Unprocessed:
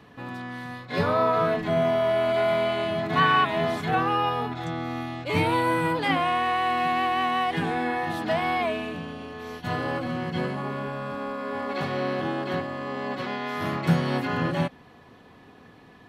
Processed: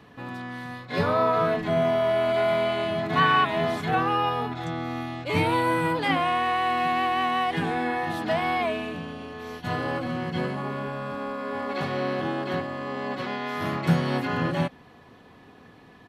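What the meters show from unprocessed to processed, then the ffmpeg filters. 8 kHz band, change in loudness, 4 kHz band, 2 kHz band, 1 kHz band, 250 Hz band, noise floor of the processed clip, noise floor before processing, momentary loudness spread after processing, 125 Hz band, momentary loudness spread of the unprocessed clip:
no reading, 0.0 dB, 0.0 dB, 0.0 dB, 0.0 dB, 0.0 dB, -51 dBFS, -51 dBFS, 10 LU, 0.0 dB, 10 LU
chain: -af "aresample=32000,aresample=44100"

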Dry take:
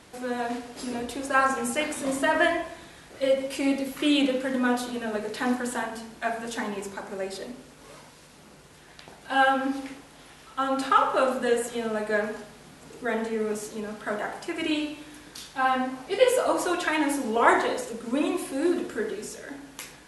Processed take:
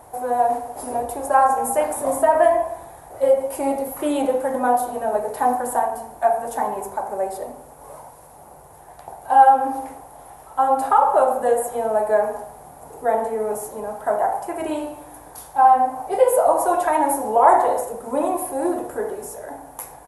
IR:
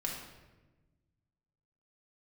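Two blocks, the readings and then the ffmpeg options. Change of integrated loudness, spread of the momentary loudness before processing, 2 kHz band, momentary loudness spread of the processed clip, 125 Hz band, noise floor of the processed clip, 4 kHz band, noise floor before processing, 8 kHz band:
+6.5 dB, 16 LU, -4.5 dB, 16 LU, no reading, -45 dBFS, under -10 dB, -51 dBFS, +5.0 dB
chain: -filter_complex "[0:a]firequalizer=gain_entry='entry(110,0);entry(200,-11);entry(770,11);entry(1300,-6);entry(2800,-18);entry(4500,-17);entry(11000,6)':delay=0.05:min_phase=1,asplit=2[s0][s1];[s1]alimiter=limit=0.178:level=0:latency=1:release=277,volume=1.33[s2];[s0][s2]amix=inputs=2:normalize=0,volume=0.891"

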